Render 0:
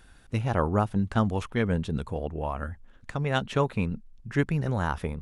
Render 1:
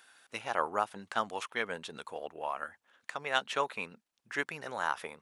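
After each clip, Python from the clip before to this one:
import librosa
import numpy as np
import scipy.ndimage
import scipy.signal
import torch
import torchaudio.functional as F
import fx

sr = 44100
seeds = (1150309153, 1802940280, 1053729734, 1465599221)

y = scipy.signal.sosfilt(scipy.signal.bessel(2, 920.0, 'highpass', norm='mag', fs=sr, output='sos'), x)
y = F.gain(torch.from_numpy(y), 1.0).numpy()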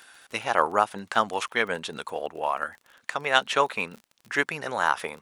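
y = fx.dmg_crackle(x, sr, seeds[0], per_s=34.0, level_db=-46.0)
y = F.gain(torch.from_numpy(y), 9.0).numpy()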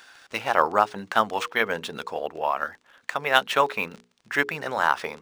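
y = fx.hum_notches(x, sr, base_hz=60, count=8)
y = np.interp(np.arange(len(y)), np.arange(len(y))[::3], y[::3])
y = F.gain(torch.from_numpy(y), 2.0).numpy()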